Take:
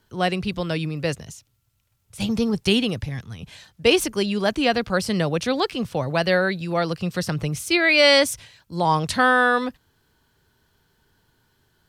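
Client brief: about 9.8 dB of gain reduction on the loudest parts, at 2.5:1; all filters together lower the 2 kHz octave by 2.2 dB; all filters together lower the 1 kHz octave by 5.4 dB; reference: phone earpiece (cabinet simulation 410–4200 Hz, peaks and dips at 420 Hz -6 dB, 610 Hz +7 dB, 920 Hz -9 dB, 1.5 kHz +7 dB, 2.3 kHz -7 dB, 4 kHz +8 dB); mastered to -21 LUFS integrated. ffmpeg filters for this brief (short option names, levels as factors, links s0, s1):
-af "equalizer=f=1000:t=o:g=-6,equalizer=f=2000:t=o:g=-3.5,acompressor=threshold=0.0398:ratio=2.5,highpass=410,equalizer=f=420:t=q:w=4:g=-6,equalizer=f=610:t=q:w=4:g=7,equalizer=f=920:t=q:w=4:g=-9,equalizer=f=1500:t=q:w=4:g=7,equalizer=f=2300:t=q:w=4:g=-7,equalizer=f=4000:t=q:w=4:g=8,lowpass=f=4200:w=0.5412,lowpass=f=4200:w=1.3066,volume=3.35"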